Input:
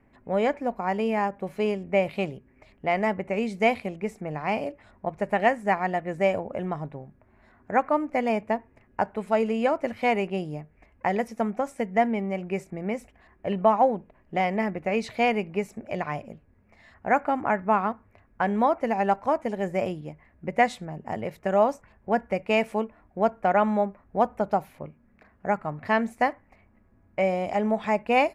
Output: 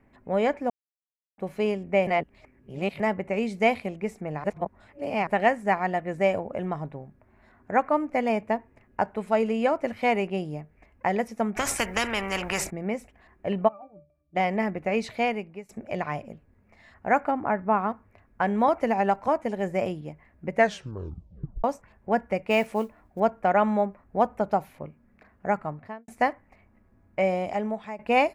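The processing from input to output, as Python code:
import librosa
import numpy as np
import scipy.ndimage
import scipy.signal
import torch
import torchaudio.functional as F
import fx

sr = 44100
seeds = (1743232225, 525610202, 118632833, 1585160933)

y = fx.spectral_comp(x, sr, ratio=4.0, at=(11.55, 12.69), fade=0.02)
y = fx.octave_resonator(y, sr, note='D', decay_s=0.28, at=(13.67, 14.35), fade=0.02)
y = fx.lowpass(y, sr, hz=fx.line((17.3, 1200.0), (17.88, 1900.0)), slope=6, at=(17.3, 17.88), fade=0.02)
y = fx.band_squash(y, sr, depth_pct=70, at=(18.68, 19.28))
y = fx.mod_noise(y, sr, seeds[0], snr_db=31, at=(22.5, 23.2))
y = fx.studio_fade_out(y, sr, start_s=25.58, length_s=0.5)
y = fx.edit(y, sr, fx.silence(start_s=0.7, length_s=0.68),
    fx.reverse_span(start_s=2.07, length_s=0.93),
    fx.reverse_span(start_s=4.44, length_s=0.83),
    fx.fade_out_to(start_s=15.07, length_s=0.62, floor_db=-20.0),
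    fx.tape_stop(start_s=20.55, length_s=1.09),
    fx.fade_out_to(start_s=27.37, length_s=0.62, floor_db=-16.5), tone=tone)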